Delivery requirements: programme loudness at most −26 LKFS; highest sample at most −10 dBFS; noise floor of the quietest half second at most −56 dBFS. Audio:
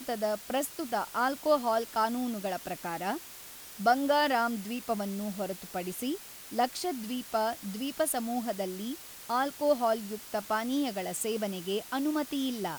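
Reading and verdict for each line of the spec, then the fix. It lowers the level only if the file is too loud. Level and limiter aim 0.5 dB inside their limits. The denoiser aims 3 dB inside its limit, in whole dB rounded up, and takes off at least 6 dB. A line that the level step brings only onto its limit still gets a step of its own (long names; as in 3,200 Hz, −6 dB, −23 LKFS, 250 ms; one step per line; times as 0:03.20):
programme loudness −31.5 LKFS: in spec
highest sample −13.0 dBFS: in spec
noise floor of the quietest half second −47 dBFS: out of spec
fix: broadband denoise 12 dB, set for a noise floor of −47 dBFS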